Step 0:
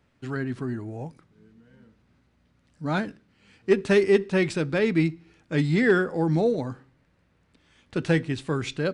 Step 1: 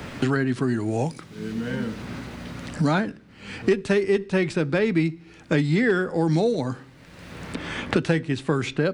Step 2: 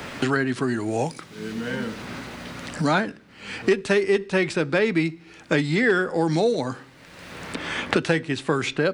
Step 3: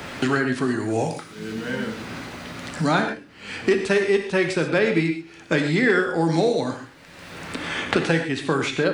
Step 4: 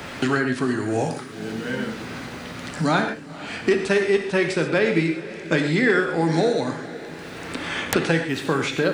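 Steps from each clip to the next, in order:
three-band squash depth 100%; gain +1.5 dB
low shelf 270 Hz -10 dB; gain +4 dB
non-linear reverb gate 0.16 s flat, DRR 5 dB
wrapped overs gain 5.5 dB; diffused feedback echo 0.492 s, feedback 60%, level -16 dB

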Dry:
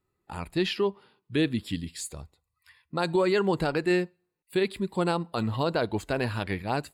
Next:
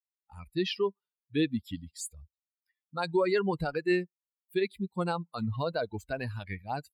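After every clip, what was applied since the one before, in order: per-bin expansion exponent 2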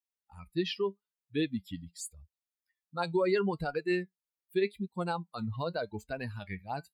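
flange 0.81 Hz, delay 4.1 ms, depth 1.9 ms, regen +73%; gain +2 dB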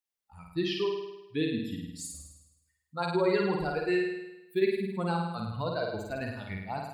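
flutter echo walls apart 9 m, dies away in 0.95 s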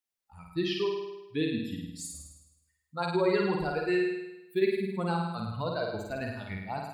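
reverb RT60 0.40 s, pre-delay 65 ms, DRR 13.5 dB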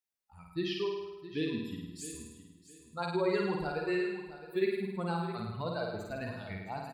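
feedback echo 0.664 s, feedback 25%, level -14 dB; gain -4 dB

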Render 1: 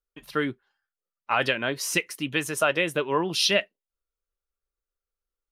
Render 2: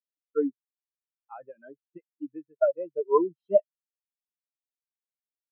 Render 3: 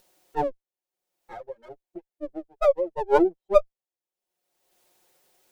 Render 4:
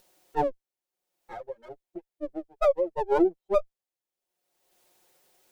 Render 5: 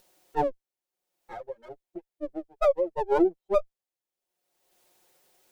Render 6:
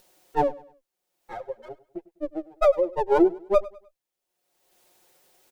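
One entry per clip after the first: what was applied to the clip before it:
notches 60/120 Hz; de-esser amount 95%; spectral expander 4:1; gain +3 dB
minimum comb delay 5.5 ms; band shelf 510 Hz +9.5 dB; upward compressor, threshold -38 dBFS; gain -1.5 dB
limiter -13.5 dBFS, peak gain reduction 7.5 dB
nothing audible
feedback echo 0.101 s, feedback 35%, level -19.5 dB; gain +3.5 dB

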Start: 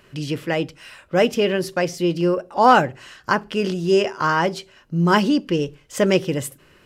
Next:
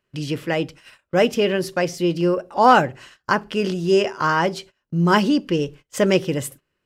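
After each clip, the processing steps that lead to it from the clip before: gate -40 dBFS, range -23 dB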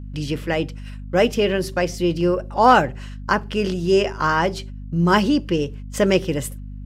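hum 50 Hz, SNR 13 dB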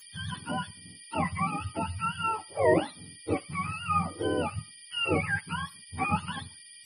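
spectrum mirrored in octaves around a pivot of 690 Hz; gain -9 dB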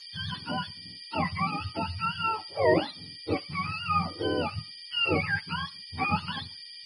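synth low-pass 4700 Hz, resonance Q 4.5

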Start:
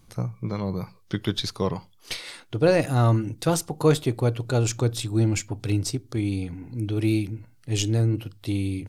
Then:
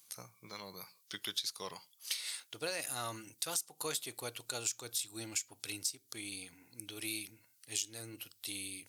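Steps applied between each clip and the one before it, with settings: differentiator; compressor 6:1, threshold -38 dBFS, peak gain reduction 13.5 dB; gain +4.5 dB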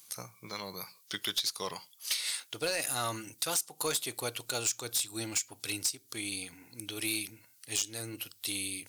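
overloaded stage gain 31 dB; gain +7 dB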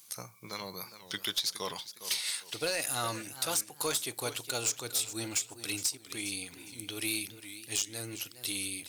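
warbling echo 0.411 s, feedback 31%, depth 142 cents, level -13 dB

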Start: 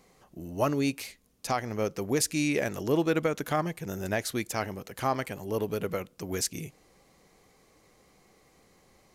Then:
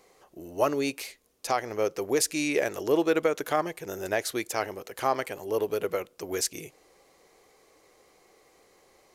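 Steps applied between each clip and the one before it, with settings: resonant low shelf 280 Hz -9 dB, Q 1.5; gain +1.5 dB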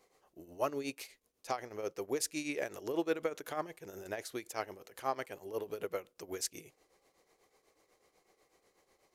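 tremolo triangle 8.1 Hz, depth 75%; gain -7 dB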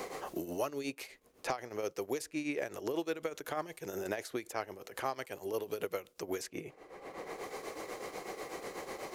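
three-band squash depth 100%; gain +1 dB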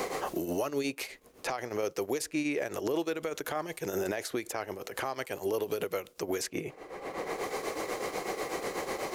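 limiter -30 dBFS, peak gain reduction 11.5 dB; gain +8 dB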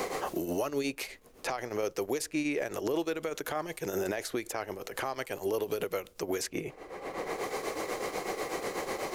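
added noise brown -64 dBFS

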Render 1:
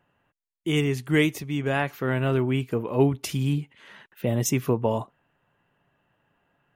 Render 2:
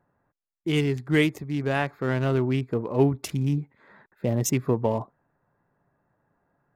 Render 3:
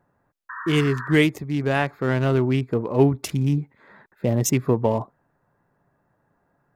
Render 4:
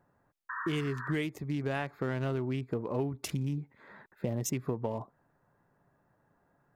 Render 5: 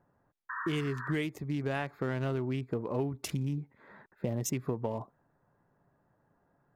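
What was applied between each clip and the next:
Wiener smoothing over 15 samples
painted sound noise, 0.49–1.15, 930–1900 Hz -38 dBFS; gain +3.5 dB
compressor 6:1, threshold -27 dBFS, peak gain reduction 14.5 dB; gain -3 dB
mismatched tape noise reduction decoder only

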